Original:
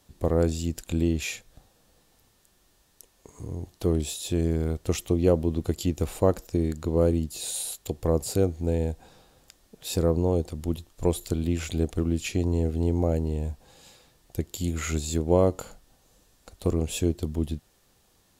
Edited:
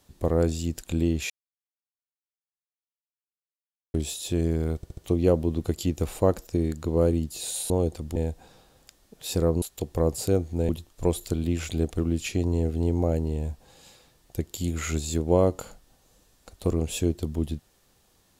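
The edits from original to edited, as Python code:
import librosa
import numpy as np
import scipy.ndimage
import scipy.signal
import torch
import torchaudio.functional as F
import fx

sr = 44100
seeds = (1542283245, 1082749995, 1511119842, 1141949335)

y = fx.edit(x, sr, fx.silence(start_s=1.3, length_s=2.64),
    fx.stutter_over(start_s=4.76, slice_s=0.07, count=4),
    fx.swap(start_s=7.7, length_s=1.07, other_s=10.23, other_length_s=0.46), tone=tone)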